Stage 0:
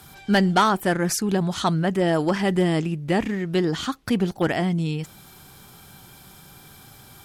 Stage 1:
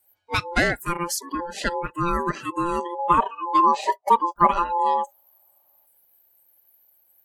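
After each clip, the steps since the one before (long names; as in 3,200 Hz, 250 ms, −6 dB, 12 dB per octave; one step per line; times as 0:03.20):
noise reduction from a noise print of the clip's start 29 dB
ring modulation 690 Hz
gain on a spectral selection 0:02.99–0:05.86, 550–1,300 Hz +11 dB
level +1.5 dB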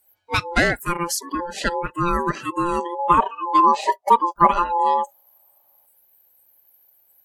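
tape wow and flutter 18 cents
level +2.5 dB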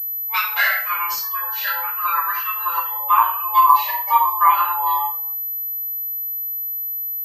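inverse Chebyshev high-pass filter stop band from 170 Hz, stop band 80 dB
rectangular room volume 780 cubic metres, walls furnished, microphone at 5.7 metres
switching amplifier with a slow clock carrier 12,000 Hz
level −4 dB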